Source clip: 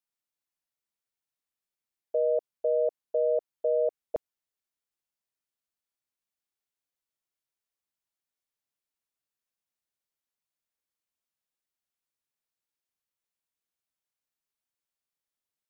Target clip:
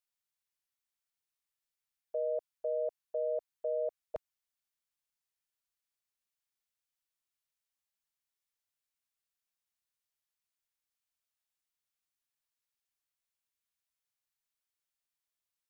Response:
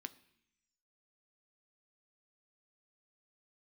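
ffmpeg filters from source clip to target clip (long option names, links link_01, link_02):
-af "equalizer=frequency=310:width_type=o:width=2.1:gain=-13"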